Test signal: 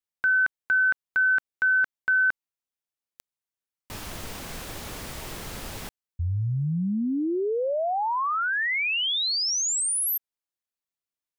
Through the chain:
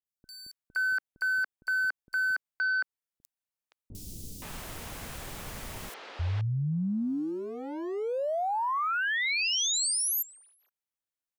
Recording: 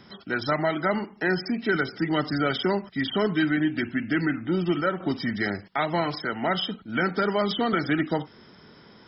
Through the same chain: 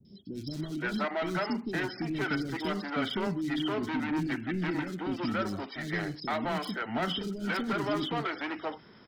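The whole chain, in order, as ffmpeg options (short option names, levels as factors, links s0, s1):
-filter_complex "[0:a]adynamicequalizer=threshold=0.01:dfrequency=290:dqfactor=2.2:tfrequency=290:tqfactor=2.2:attack=5:release=100:ratio=0.375:range=1.5:mode=boostabove:tftype=bell,volume=14.1,asoftclip=hard,volume=0.0708,acrossover=split=360|4500[s0][s1][s2];[s2]adelay=50[s3];[s1]adelay=520[s4];[s0][s4][s3]amix=inputs=3:normalize=0,volume=0.708"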